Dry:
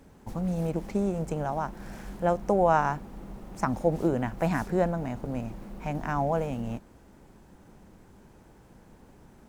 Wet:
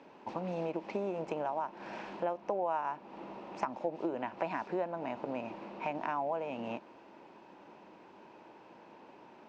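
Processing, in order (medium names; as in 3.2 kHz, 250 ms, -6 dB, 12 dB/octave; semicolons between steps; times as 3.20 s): cabinet simulation 310–4900 Hz, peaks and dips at 330 Hz +5 dB, 610 Hz +5 dB, 950 Hz +9 dB, 2.6 kHz +9 dB; compression 4:1, threshold -33 dBFS, peak gain reduction 17.5 dB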